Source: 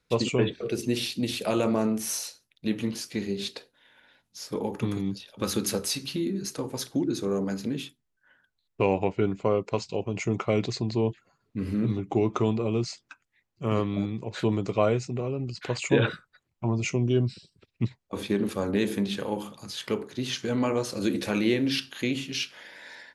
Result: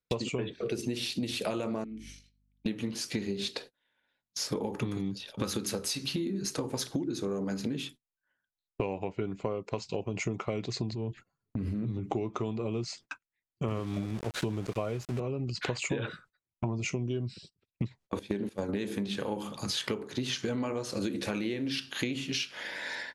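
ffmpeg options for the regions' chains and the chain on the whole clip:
ffmpeg -i in.wav -filter_complex "[0:a]asettb=1/sr,asplit=3[link_01][link_02][link_03];[link_01]atrim=end=1.844[link_04];[link_02]atrim=start=1.84:end=2.66,asetpts=PTS-STARTPTS,afade=type=in:duration=0.004:curve=qsin,afade=type=out:start_time=0.816:duration=0.004:curve=qsin,asplit=3[link_05][link_06][link_07];[link_05]bandpass=frequency=270:width_type=q:width=8,volume=0dB[link_08];[link_06]bandpass=frequency=2290:width_type=q:width=8,volume=-6dB[link_09];[link_07]bandpass=frequency=3010:width_type=q:width=8,volume=-9dB[link_10];[link_08][link_09][link_10]amix=inputs=3:normalize=0,aeval=exprs='val(0)+0.00224*(sin(2*PI*50*n/s)+sin(2*PI*2*50*n/s)/2+sin(2*PI*3*50*n/s)/3+sin(2*PI*4*50*n/s)/4+sin(2*PI*5*50*n/s)/5)':channel_layout=same[link_11];[link_03]atrim=start=2.656[link_12];[link_04][link_11]acrossfade=duration=0.004:curve1=hsin:curve2=qsin[link_13];[link_13][link_12]acrossfade=duration=0.004:curve1=qsin:curve2=hsin,asettb=1/sr,asplit=3[link_14][link_15][link_16];[link_14]atrim=end=10.934[link_17];[link_15]atrim=start=10.93:end=12.05,asetpts=PTS-STARTPTS,afade=type=in:duration=0.004:curve=qsin,afade=type=out:start_time=1.116:duration=0.004:curve=qsin,lowshelf=frequency=220:gain=10,acompressor=threshold=-37dB:ratio=3:attack=3.2:release=140:knee=1:detection=peak[link_18];[link_16]atrim=start=12.046[link_19];[link_17][link_18]acrossfade=duration=0.004:curve1=hsin:curve2=qsin[link_20];[link_20][link_19]acrossfade=duration=0.004:curve1=qsin:curve2=hsin,asettb=1/sr,asplit=3[link_21][link_22][link_23];[link_21]atrim=end=13.684[link_24];[link_22]atrim=start=13.68:end=15.2,asetpts=PTS-STARTPTS,afade=type=in:duration=0.004:curve=qsin,afade=type=out:start_time=1.516:duration=0.004:curve=qsin,equalizer=frequency=78:width=1.7:gain=6.5,aeval=exprs='val(0)*gte(abs(val(0)),0.0158)':channel_layout=same[link_25];[link_23]atrim=start=15.196[link_26];[link_24][link_25]acrossfade=duration=0.004:curve1=hsin:curve2=qsin[link_27];[link_27][link_26]acrossfade=duration=0.004:curve1=qsin:curve2=hsin,asettb=1/sr,asplit=3[link_28][link_29][link_30];[link_28]atrim=end=18.194[link_31];[link_29]atrim=start=18.19:end=18.69,asetpts=PTS-STARTPTS,afade=type=in:duration=0.004:curve=qsin,afade=type=out:start_time=0.496:duration=0.004:curve=qsin,agate=range=-16dB:threshold=-30dB:ratio=16:release=100:detection=peak,equalizer=frequency=1200:width=6.8:gain=-13[link_32];[link_30]atrim=start=18.686[link_33];[link_31][link_32]acrossfade=duration=0.004:curve1=hsin:curve2=qsin[link_34];[link_34][link_33]acrossfade=duration=0.004:curve1=qsin:curve2=hsin,agate=range=-26dB:threshold=-49dB:ratio=16:detection=peak,lowpass=11000,acompressor=threshold=-37dB:ratio=16,volume=8dB" out.wav

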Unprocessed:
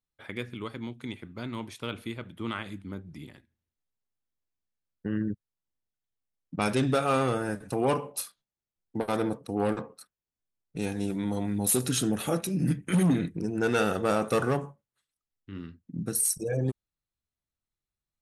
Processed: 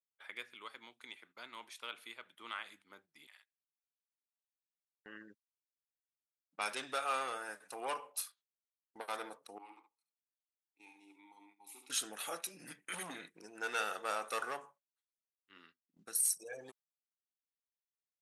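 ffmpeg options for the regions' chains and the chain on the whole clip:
ffmpeg -i in.wav -filter_complex "[0:a]asettb=1/sr,asplit=3[link_01][link_02][link_03];[link_01]atrim=end=3.274[link_04];[link_02]atrim=start=3.27:end=5.06,asetpts=PTS-STARTPTS,afade=type=in:duration=0.004:curve=qsin,afade=type=out:start_time=1.786:duration=0.004:curve=qsin,highpass=1100,asplit=2[link_05][link_06];[link_06]adelay=49,volume=-3dB[link_07];[link_05][link_07]amix=inputs=2:normalize=0,atrim=end_sample=78939[link_08];[link_03]atrim=start=5.056[link_09];[link_04][link_08]acrossfade=duration=0.004:curve1=hsin:curve2=qsin[link_10];[link_10][link_09]acrossfade=duration=0.004:curve1=qsin:curve2=hsin,asettb=1/sr,asplit=3[link_11][link_12][link_13];[link_11]atrim=end=9.584[link_14];[link_12]atrim=start=9.58:end=11.9,asetpts=PTS-STARTPTS,afade=type=in:duration=0.004:curve=qsin,afade=type=out:start_time=2.316:duration=0.004:curve=qsin,asplit=3[link_15][link_16][link_17];[link_15]bandpass=frequency=300:width_type=q:width=8,volume=0dB[link_18];[link_16]bandpass=frequency=870:width_type=q:width=8,volume=-6dB[link_19];[link_17]bandpass=frequency=2240:width_type=q:width=8,volume=-9dB[link_20];[link_18][link_19][link_20]amix=inputs=3:normalize=0,aemphasis=mode=production:type=bsi,aecho=1:1:70:0.422,atrim=end_sample=102312[link_21];[link_13]atrim=start=11.896[link_22];[link_14][link_21]acrossfade=duration=0.004:curve1=hsin:curve2=qsin[link_23];[link_23][link_22]acrossfade=duration=0.004:curve1=qsin:curve2=hsin,highpass=920,agate=range=-13dB:threshold=-59dB:ratio=16:detection=peak,volume=-5.5dB" out.wav

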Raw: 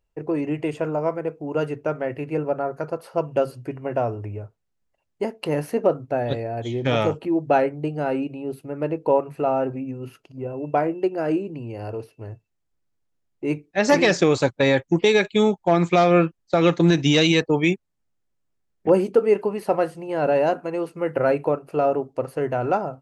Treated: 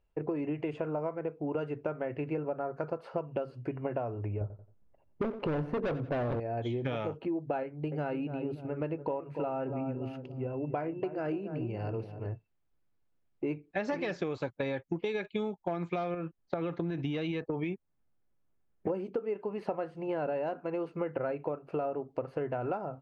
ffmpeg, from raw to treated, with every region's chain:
ffmpeg -i in.wav -filter_complex "[0:a]asettb=1/sr,asplit=3[link_01][link_02][link_03];[link_01]atrim=end=4.414[link_04];[link_02]atrim=start=4.41:end=6.4,asetpts=PTS-STARTPTS,afade=type=in:duration=0.004:curve=qsin,afade=type=out:start_time=1.986:duration=0.004:curve=qsin,tiltshelf=frequency=1400:gain=10,volume=18.5dB,asoftclip=hard,volume=-18.5dB,aecho=1:1:89|178|267:0.168|0.0504|0.0151,atrim=end_sample=87759[link_05];[link_03]atrim=start=6.396[link_06];[link_04][link_05]acrossfade=duration=0.004:curve1=hsin:curve2=qsin[link_07];[link_07][link_06]acrossfade=duration=0.004:curve1=qsin:curve2=hsin,asettb=1/sr,asplit=3[link_08][link_09][link_10];[link_08]atrim=end=7.634[link_11];[link_09]atrim=start=7.63:end=12.26,asetpts=PTS-STARTPTS,afade=type=in:duration=0.004:curve=qsin,afade=type=out:start_time=4.626:duration=0.004:curve=qsin,equalizer=frequency=530:width=0.42:gain=-5,asplit=2[link_12][link_13];[link_13]adelay=288,lowpass=frequency=860:poles=1,volume=-10dB,asplit=2[link_14][link_15];[link_15]adelay=288,lowpass=frequency=860:poles=1,volume=0.42,asplit=2[link_16][link_17];[link_17]adelay=288,lowpass=frequency=860:poles=1,volume=0.42,asplit=2[link_18][link_19];[link_19]adelay=288,lowpass=frequency=860:poles=1,volume=0.42[link_20];[link_12][link_14][link_16][link_18][link_20]amix=inputs=5:normalize=0,atrim=end_sample=204183[link_21];[link_10]atrim=start=12.256[link_22];[link_11][link_21]acrossfade=duration=0.004:curve1=hsin:curve2=qsin[link_23];[link_23][link_22]acrossfade=duration=0.004:curve1=qsin:curve2=hsin,asettb=1/sr,asplit=3[link_24][link_25][link_26];[link_24]atrim=end=16.144[link_27];[link_25]atrim=start=16.14:end=18.9,asetpts=PTS-STARTPTS,afade=type=in:duration=0.004:curve=qsin,afade=type=out:start_time=2.756:duration=0.004:curve=qsin,aemphasis=mode=reproduction:type=75fm,acompressor=threshold=-18dB:ratio=5:attack=3.2:release=140:knee=1:detection=peak[link_28];[link_26]atrim=start=18.896[link_29];[link_27][link_28]acrossfade=duration=0.004:curve1=hsin:curve2=qsin[link_30];[link_30][link_29]acrossfade=duration=0.004:curve1=qsin:curve2=hsin,lowpass=3000,bandreject=frequency=1900:width=22,acompressor=threshold=-30dB:ratio=12" out.wav

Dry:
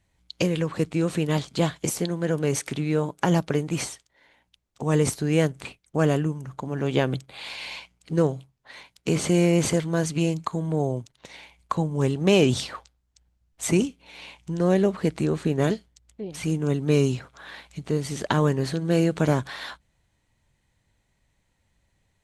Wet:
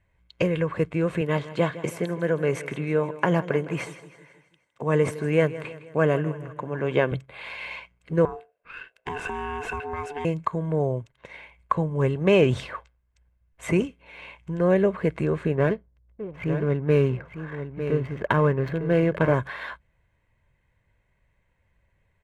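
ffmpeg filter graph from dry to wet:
ffmpeg -i in.wav -filter_complex "[0:a]asettb=1/sr,asplit=3[link_01][link_02][link_03];[link_01]atrim=end=1.214[link_04];[link_02]atrim=start=1.21:end=7.12,asetpts=PTS-STARTPTS,afade=type=in:duration=0.004:curve=qsin,afade=type=out:start_time=5.906:duration=0.004:curve=qsin,highpass=140,aecho=1:1:160|320|480|640|800:0.168|0.0873|0.0454|0.0236|0.0123,atrim=end_sample=260631[link_05];[link_03]atrim=start=7.116[link_06];[link_04][link_05]acrossfade=duration=0.004:curve1=hsin:curve2=qsin[link_07];[link_07][link_06]acrossfade=duration=0.004:curve1=qsin:curve2=hsin,asettb=1/sr,asplit=3[link_08][link_09][link_10];[link_08]atrim=end=8.254[link_11];[link_09]atrim=start=8.25:end=10.25,asetpts=PTS-STARTPTS,afade=type=in:duration=0.004:curve=qsin,afade=type=out:start_time=1.996:duration=0.004:curve=qsin,equalizer=frequency=2100:width_type=o:width=0.21:gain=13,acompressor=threshold=-25dB:ratio=5:attack=3.2:release=140:knee=1:detection=peak,aeval=exprs='val(0)*sin(2*PI*580*n/s)':channel_layout=same[link_12];[link_10]atrim=start=10.246[link_13];[link_11][link_12]acrossfade=duration=0.004:curve1=hsin:curve2=qsin[link_14];[link_14][link_13]acrossfade=duration=0.004:curve1=qsin:curve2=hsin,asettb=1/sr,asplit=3[link_15][link_16][link_17];[link_15]atrim=end=15.554[link_18];[link_16]atrim=start=15.55:end=19.34,asetpts=PTS-STARTPTS,afade=type=in:duration=0.004:curve=qsin,afade=type=out:start_time=3.786:duration=0.004:curve=qsin,adynamicsmooth=sensitivity=7:basefreq=790,aecho=1:1:903:0.335,atrim=end_sample=167139[link_19];[link_17]atrim=start=19.336[link_20];[link_18][link_19]acrossfade=duration=0.004:curve1=hsin:curve2=qsin[link_21];[link_21][link_20]acrossfade=duration=0.004:curve1=qsin:curve2=hsin,highshelf=frequency=3200:width_type=q:width=1.5:gain=-12.5,aecho=1:1:1.9:0.4" out.wav

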